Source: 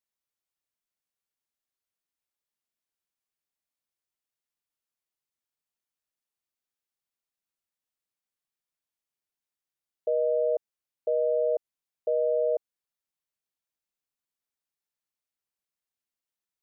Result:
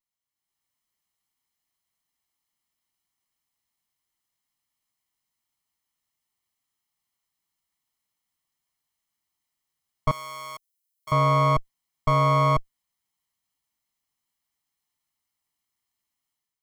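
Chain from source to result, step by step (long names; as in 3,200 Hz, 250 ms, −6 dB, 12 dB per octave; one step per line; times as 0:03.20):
lower of the sound and its delayed copy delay 0.98 ms
automatic gain control gain up to 9.5 dB
0:10.11–0:11.12: first difference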